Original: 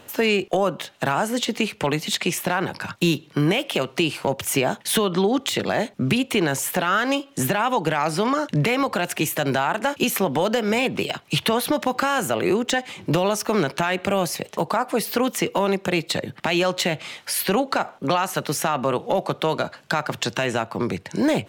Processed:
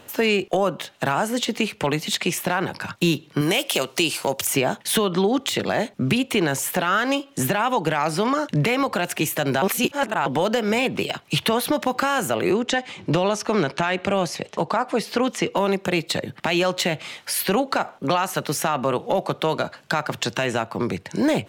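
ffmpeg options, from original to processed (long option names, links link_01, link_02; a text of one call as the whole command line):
ffmpeg -i in.wav -filter_complex "[0:a]asettb=1/sr,asplit=3[link_01][link_02][link_03];[link_01]atrim=end=3.414[link_04];[link_02]atrim=start=3.41:end=4.47,asetpts=PTS-STARTPTS,afade=type=in:duration=0.004:curve=qsin,afade=type=out:start_time=1.056:duration=0.004:curve=qsin,bass=frequency=250:gain=-6,treble=frequency=4000:gain=11[link_05];[link_03]atrim=start=4.466[link_06];[link_04][link_05]acrossfade=duration=0.004:curve1=hsin:curve2=qsin[link_07];[link_07][link_06]acrossfade=duration=0.004:curve1=qsin:curve2=hsin,asettb=1/sr,asplit=3[link_08][link_09][link_10];[link_08]atrim=end=12.514[link_11];[link_09]atrim=start=12.51:end=15.57,asetpts=PTS-STARTPTS,afade=type=in:duration=0.004:curve=qsin,afade=type=out:start_time=3.056:duration=0.004:curve=qsin,lowpass=7000[link_12];[link_10]atrim=start=15.566[link_13];[link_11][link_12]acrossfade=duration=0.004:curve1=hsin:curve2=qsin[link_14];[link_14][link_13]acrossfade=duration=0.004:curve1=qsin:curve2=hsin,asplit=3[link_15][link_16][link_17];[link_15]atrim=end=9.622[link_18];[link_16]atrim=start=9.618:end=10.262,asetpts=PTS-STARTPTS,areverse[link_19];[link_17]atrim=start=10.258[link_20];[link_18][link_19]acrossfade=duration=0.004:curve1=hsin:curve2=hsin[link_21];[link_21][link_20]acrossfade=duration=0.004:curve1=hsin:curve2=hsin" out.wav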